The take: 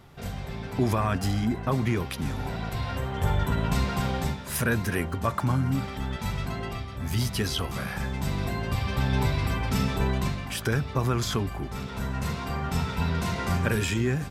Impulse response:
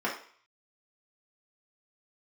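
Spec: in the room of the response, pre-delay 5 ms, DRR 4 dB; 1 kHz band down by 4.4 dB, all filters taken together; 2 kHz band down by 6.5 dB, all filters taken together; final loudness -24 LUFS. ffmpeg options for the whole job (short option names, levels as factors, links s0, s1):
-filter_complex "[0:a]equalizer=f=1000:t=o:g=-3.5,equalizer=f=2000:t=o:g=-7.5,asplit=2[s0][s1];[1:a]atrim=start_sample=2205,adelay=5[s2];[s1][s2]afir=irnorm=-1:irlink=0,volume=0.211[s3];[s0][s3]amix=inputs=2:normalize=0,volume=1.58"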